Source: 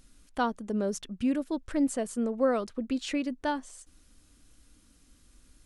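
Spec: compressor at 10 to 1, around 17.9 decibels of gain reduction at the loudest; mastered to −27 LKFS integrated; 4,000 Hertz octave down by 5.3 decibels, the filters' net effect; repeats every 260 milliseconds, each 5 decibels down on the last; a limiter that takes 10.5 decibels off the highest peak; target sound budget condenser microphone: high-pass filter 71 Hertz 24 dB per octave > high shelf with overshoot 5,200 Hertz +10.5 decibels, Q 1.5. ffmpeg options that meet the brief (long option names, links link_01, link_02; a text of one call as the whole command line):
ffmpeg -i in.wav -af "equalizer=frequency=4000:width_type=o:gain=-7.5,acompressor=threshold=-40dB:ratio=10,alimiter=level_in=13.5dB:limit=-24dB:level=0:latency=1,volume=-13.5dB,highpass=frequency=71:width=0.5412,highpass=frequency=71:width=1.3066,highshelf=frequency=5200:width_type=q:width=1.5:gain=10.5,aecho=1:1:260|520|780|1040|1300|1560|1820:0.562|0.315|0.176|0.0988|0.0553|0.031|0.0173,volume=16.5dB" out.wav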